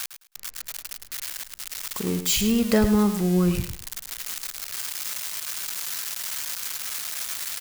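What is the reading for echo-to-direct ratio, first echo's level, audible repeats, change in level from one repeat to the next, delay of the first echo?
-10.0 dB, -10.0 dB, 2, -14.0 dB, 106 ms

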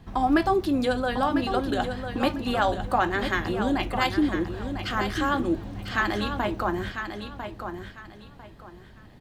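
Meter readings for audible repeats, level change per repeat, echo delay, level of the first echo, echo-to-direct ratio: 3, -12.0 dB, 999 ms, -8.0 dB, -7.5 dB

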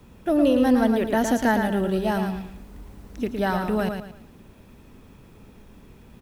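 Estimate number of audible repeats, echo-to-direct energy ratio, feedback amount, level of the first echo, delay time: 3, -5.5 dB, 32%, -6.0 dB, 112 ms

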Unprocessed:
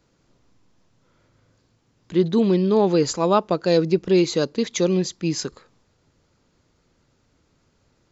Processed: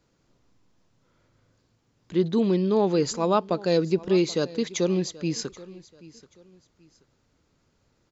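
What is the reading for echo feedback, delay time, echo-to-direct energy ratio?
31%, 781 ms, -19.5 dB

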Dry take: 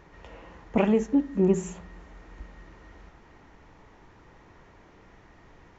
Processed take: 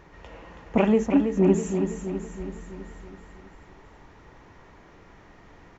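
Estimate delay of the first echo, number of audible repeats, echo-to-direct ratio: 326 ms, 6, -5.5 dB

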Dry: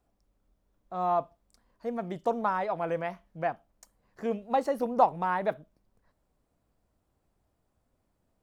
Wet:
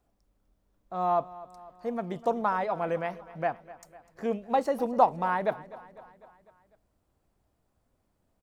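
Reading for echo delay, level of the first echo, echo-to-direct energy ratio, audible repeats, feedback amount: 250 ms, -18.5 dB, -16.5 dB, 4, 58%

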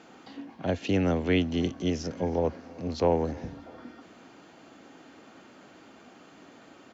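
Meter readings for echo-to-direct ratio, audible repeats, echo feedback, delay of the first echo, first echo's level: -22.5 dB, 2, 37%, 317 ms, -23.0 dB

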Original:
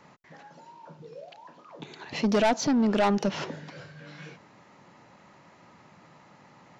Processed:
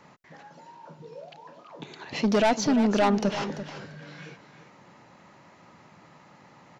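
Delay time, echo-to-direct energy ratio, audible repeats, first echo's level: 341 ms, -11.5 dB, 2, -11.5 dB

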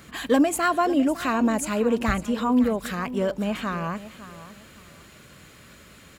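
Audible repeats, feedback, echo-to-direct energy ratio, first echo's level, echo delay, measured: 2, 27%, -14.5 dB, -15.0 dB, 556 ms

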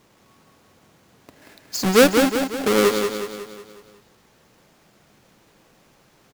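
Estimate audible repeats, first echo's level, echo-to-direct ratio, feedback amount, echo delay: 5, -6.0 dB, -4.5 dB, 51%, 183 ms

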